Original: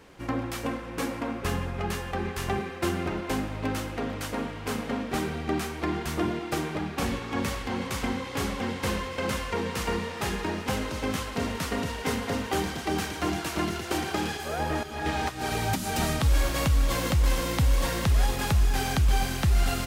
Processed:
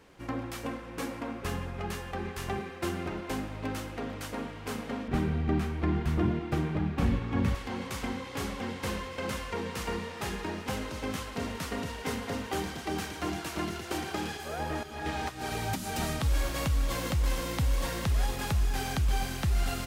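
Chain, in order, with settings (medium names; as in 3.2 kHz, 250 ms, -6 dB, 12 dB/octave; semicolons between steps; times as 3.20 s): 5.08–7.55 s: tone controls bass +12 dB, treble -9 dB; trim -5 dB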